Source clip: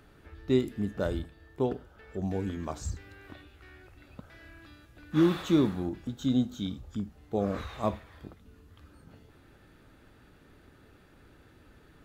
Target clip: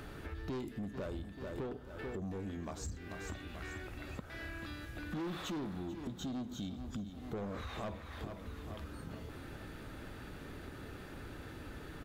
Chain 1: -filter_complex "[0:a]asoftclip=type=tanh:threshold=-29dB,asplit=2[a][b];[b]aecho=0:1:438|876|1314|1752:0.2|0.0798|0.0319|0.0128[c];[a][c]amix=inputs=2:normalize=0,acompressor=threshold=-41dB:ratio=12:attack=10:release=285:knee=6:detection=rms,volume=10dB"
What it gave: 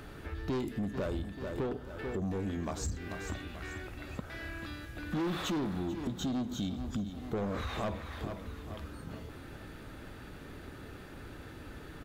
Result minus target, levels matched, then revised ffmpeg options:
compressor: peak gain reduction -6.5 dB
-filter_complex "[0:a]asoftclip=type=tanh:threshold=-29dB,asplit=2[a][b];[b]aecho=0:1:438|876|1314|1752:0.2|0.0798|0.0319|0.0128[c];[a][c]amix=inputs=2:normalize=0,acompressor=threshold=-48dB:ratio=12:attack=10:release=285:knee=6:detection=rms,volume=10dB"

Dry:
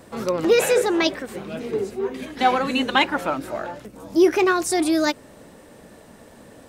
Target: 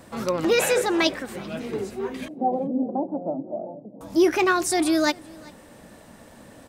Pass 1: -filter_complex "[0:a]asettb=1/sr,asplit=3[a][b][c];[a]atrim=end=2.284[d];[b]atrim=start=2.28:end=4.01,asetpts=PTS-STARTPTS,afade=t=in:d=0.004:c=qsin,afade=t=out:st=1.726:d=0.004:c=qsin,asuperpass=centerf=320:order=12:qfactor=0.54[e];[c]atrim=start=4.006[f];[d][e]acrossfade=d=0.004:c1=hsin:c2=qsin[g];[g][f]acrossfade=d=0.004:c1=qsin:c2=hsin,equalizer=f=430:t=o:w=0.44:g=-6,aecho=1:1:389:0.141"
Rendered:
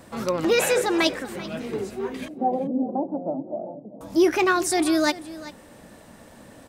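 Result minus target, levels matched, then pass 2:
echo-to-direct +7.5 dB
-filter_complex "[0:a]asettb=1/sr,asplit=3[a][b][c];[a]atrim=end=2.284[d];[b]atrim=start=2.28:end=4.01,asetpts=PTS-STARTPTS,afade=t=in:d=0.004:c=qsin,afade=t=out:st=1.726:d=0.004:c=qsin,asuperpass=centerf=320:order=12:qfactor=0.54[e];[c]atrim=start=4.006[f];[d][e]acrossfade=d=0.004:c1=hsin:c2=qsin[g];[g][f]acrossfade=d=0.004:c1=qsin:c2=hsin,equalizer=f=430:t=o:w=0.44:g=-6,aecho=1:1:389:0.0596"

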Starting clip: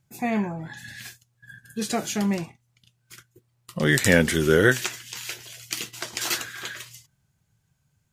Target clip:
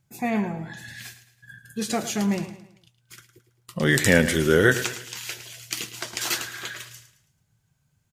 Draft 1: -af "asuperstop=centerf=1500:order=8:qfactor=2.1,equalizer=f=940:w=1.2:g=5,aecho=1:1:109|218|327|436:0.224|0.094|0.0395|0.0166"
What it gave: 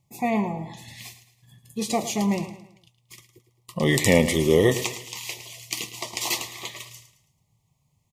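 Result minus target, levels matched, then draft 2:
2000 Hz band -5.5 dB; 1000 Hz band +2.5 dB
-af "aecho=1:1:109|218|327|436:0.224|0.094|0.0395|0.0166"

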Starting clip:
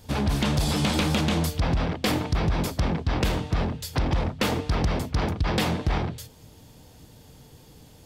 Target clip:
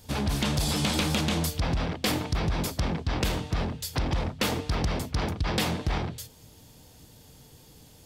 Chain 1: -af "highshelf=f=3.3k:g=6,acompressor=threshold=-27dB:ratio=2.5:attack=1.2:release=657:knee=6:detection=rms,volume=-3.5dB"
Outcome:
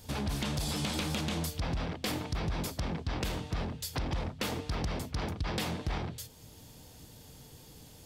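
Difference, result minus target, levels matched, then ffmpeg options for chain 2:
compressor: peak gain reduction +8 dB
-af "highshelf=f=3.3k:g=6,volume=-3.5dB"

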